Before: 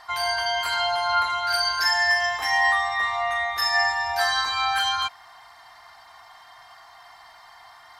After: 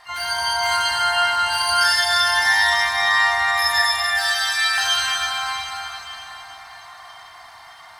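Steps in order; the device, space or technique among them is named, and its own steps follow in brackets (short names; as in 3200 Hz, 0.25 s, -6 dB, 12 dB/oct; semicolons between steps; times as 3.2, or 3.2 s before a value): 3.78–4.78 steep high-pass 1300 Hz 48 dB/oct; shimmer-style reverb (harmoniser +12 st -10 dB; reverb RT60 4.9 s, pre-delay 14 ms, DRR -6.5 dB); gain -2.5 dB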